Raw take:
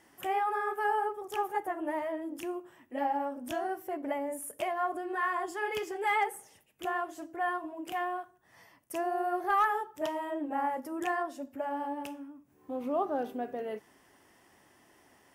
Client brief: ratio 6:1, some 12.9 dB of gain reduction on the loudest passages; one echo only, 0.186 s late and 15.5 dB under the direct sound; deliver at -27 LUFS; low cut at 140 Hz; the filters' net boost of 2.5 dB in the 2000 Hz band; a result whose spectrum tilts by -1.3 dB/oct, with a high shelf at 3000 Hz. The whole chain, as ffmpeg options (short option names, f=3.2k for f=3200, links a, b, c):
-af "highpass=140,equalizer=f=2k:t=o:g=5,highshelf=f=3k:g=-6.5,acompressor=threshold=-37dB:ratio=6,aecho=1:1:186:0.168,volume=14dB"